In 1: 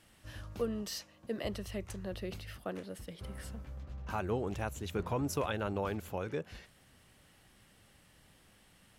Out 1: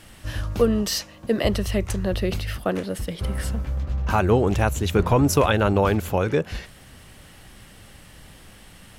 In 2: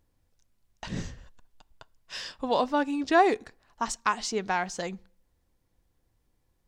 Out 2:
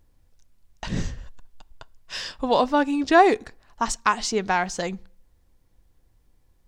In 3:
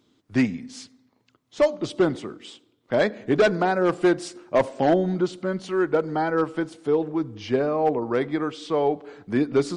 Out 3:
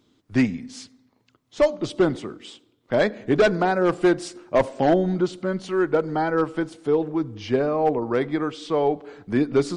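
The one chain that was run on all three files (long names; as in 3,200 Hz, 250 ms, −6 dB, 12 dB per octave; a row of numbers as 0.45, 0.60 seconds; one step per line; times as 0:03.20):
low-shelf EQ 60 Hz +8.5 dB
loudness normalisation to −23 LKFS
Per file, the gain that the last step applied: +15.0, +5.5, +0.5 decibels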